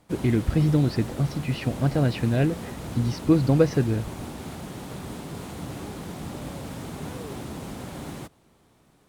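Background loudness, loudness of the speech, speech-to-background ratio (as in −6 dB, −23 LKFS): −36.5 LKFS, −24.0 LKFS, 12.5 dB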